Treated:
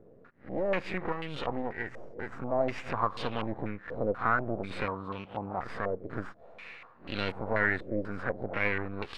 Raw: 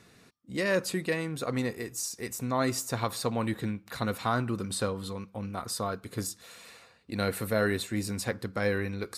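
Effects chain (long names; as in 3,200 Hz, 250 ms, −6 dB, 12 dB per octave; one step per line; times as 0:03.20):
peak hold with a rise ahead of every peak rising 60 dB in 0.30 s
half-wave rectification
0:04.84–0:05.60: high-pass filter 44 Hz
in parallel at +2 dB: downward compressor, threshold −39 dBFS, peak gain reduction 15.5 dB
on the sum: low-pass on a step sequencer 4.1 Hz 520–3,000 Hz
level −4.5 dB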